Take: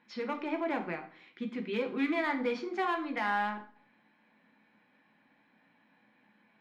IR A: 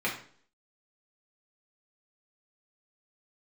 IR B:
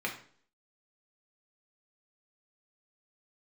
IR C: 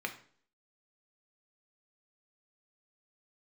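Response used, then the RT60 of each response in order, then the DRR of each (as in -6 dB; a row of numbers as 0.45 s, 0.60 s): C; 0.50 s, 0.50 s, 0.50 s; -5.5 dB, -1.5 dB, 3.5 dB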